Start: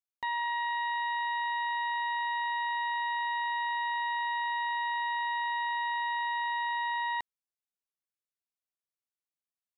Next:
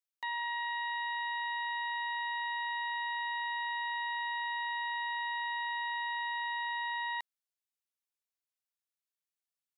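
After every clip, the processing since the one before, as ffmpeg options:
-af "highpass=f=1500:p=1"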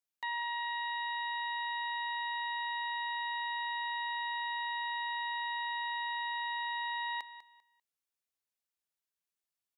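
-af "aecho=1:1:197|394|591:0.211|0.0507|0.0122"

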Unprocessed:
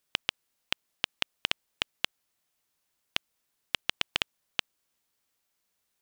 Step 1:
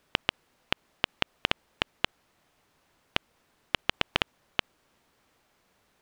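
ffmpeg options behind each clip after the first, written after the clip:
-af "lowpass=f=1200:p=1,alimiter=level_in=11.2:limit=0.891:release=50:level=0:latency=1,volume=0.891"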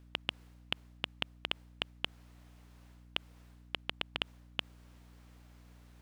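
-af "areverse,acompressor=threshold=0.0178:ratio=5,areverse,aeval=exprs='val(0)+0.00126*(sin(2*PI*60*n/s)+sin(2*PI*2*60*n/s)/2+sin(2*PI*3*60*n/s)/3+sin(2*PI*4*60*n/s)/4+sin(2*PI*5*60*n/s)/5)':c=same,volume=1.26"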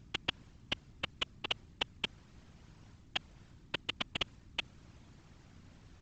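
-af "aresample=16000,acrusher=bits=4:mode=log:mix=0:aa=0.000001,aresample=44100,afftfilt=real='hypot(re,im)*cos(2*PI*random(0))':imag='hypot(re,im)*sin(2*PI*random(1))':win_size=512:overlap=0.75,volume=2.11"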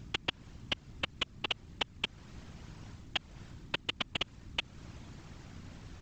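-af "acompressor=threshold=0.00794:ratio=2.5,volume=2.66"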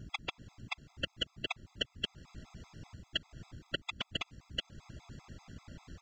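-af "afftfilt=real='re*gt(sin(2*PI*5.1*pts/sr)*(1-2*mod(floor(b*sr/1024/670),2)),0)':imag='im*gt(sin(2*PI*5.1*pts/sr)*(1-2*mod(floor(b*sr/1024/670),2)),0)':win_size=1024:overlap=0.75,volume=1.12"

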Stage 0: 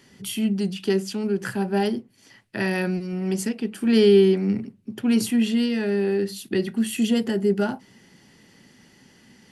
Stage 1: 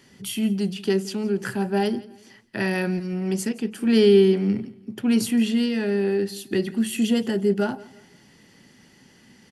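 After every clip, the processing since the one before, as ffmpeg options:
-af "aecho=1:1:170|340|510:0.0944|0.033|0.0116"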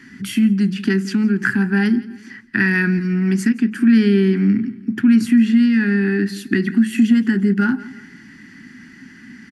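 -af "firequalizer=gain_entry='entry(140,0);entry(260,11);entry(540,-24);entry(810,-8);entry(1600,12);entry(3100,-5);entry(4900,-3);entry(11000,-9)':delay=0.05:min_phase=1,acompressor=threshold=0.0794:ratio=2,volume=2.11"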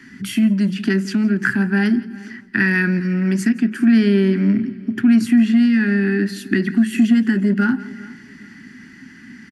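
-filter_complex "[0:a]acrossover=split=150[s0][s1];[s0]asoftclip=type=hard:threshold=0.0335[s2];[s2][s1]amix=inputs=2:normalize=0,asplit=2[s3][s4];[s4]adelay=409,lowpass=f=4400:p=1,volume=0.0891,asplit=2[s5][s6];[s6]adelay=409,lowpass=f=4400:p=1,volume=0.35,asplit=2[s7][s8];[s8]adelay=409,lowpass=f=4400:p=1,volume=0.35[s9];[s3][s5][s7][s9]amix=inputs=4:normalize=0"

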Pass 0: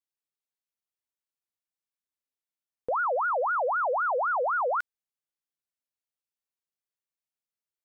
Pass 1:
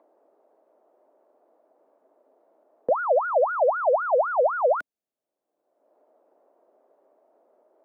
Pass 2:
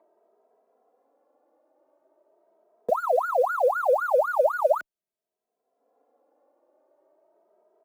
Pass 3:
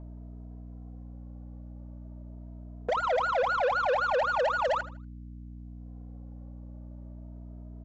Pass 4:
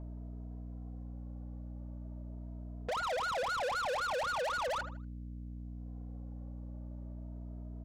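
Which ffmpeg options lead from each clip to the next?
-filter_complex "[0:a]equalizer=f=630:w=3.7:g=9,acrossover=split=140|420|870[s0][s1][s2][s3];[s2]acompressor=mode=upward:threshold=0.0224:ratio=2.5[s4];[s0][s1][s4][s3]amix=inputs=4:normalize=0,equalizer=f=270:w=0.7:g=14.5,volume=0.668"
-filter_complex "[0:a]asplit=2[s0][s1];[s1]acrusher=bits=5:mix=0:aa=0.000001,volume=0.266[s2];[s0][s2]amix=inputs=2:normalize=0,asplit=2[s3][s4];[s4]adelay=2.7,afreqshift=0.4[s5];[s3][s5]amix=inputs=2:normalize=1"
-af "aeval=exprs='val(0)+0.00631*(sin(2*PI*60*n/s)+sin(2*PI*2*60*n/s)/2+sin(2*PI*3*60*n/s)/3+sin(2*PI*4*60*n/s)/4+sin(2*PI*5*60*n/s)/5)':c=same,aresample=16000,asoftclip=type=tanh:threshold=0.0501,aresample=44100,aecho=1:1:79|158|237:0.168|0.0504|0.0151,volume=1.33"
-af "asoftclip=type=tanh:threshold=0.0224"

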